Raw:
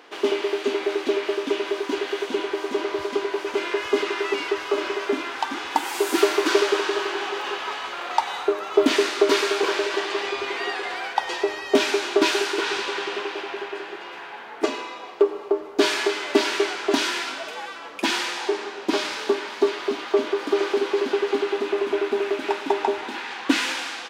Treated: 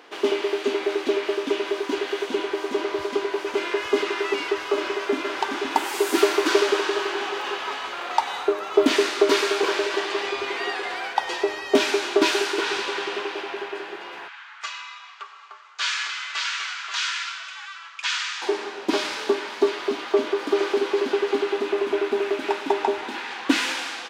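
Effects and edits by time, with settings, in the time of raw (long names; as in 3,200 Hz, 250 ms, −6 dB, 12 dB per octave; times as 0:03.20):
0:04.72–0:05.35: delay throw 520 ms, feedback 55%, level −6 dB
0:14.28–0:18.42: elliptic band-pass filter 1,200–7,300 Hz, stop band 60 dB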